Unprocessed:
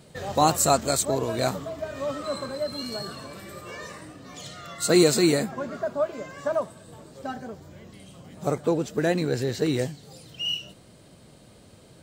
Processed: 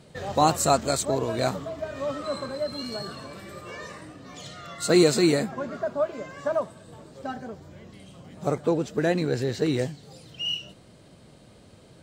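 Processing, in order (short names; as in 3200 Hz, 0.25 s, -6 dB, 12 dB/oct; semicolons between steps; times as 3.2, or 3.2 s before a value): high shelf 9900 Hz -11 dB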